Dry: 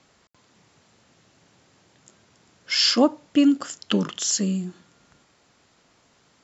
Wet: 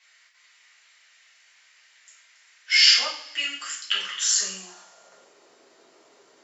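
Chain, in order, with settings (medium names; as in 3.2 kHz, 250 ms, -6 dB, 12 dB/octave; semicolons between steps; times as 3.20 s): high-pass sweep 2 kHz -> 360 Hz, 4.05–5.39 s; two-slope reverb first 0.51 s, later 1.6 s, from -20 dB, DRR -7 dB; trim -5 dB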